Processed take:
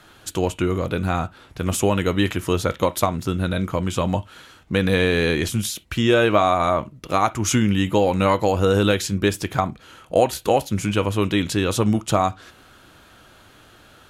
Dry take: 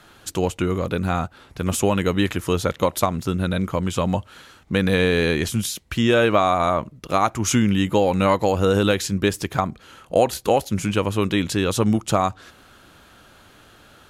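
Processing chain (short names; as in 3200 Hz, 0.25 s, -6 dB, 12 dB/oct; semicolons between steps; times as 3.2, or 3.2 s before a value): on a send: resonant high shelf 4200 Hz -7.5 dB, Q 3 + reverb, pre-delay 3 ms, DRR 11 dB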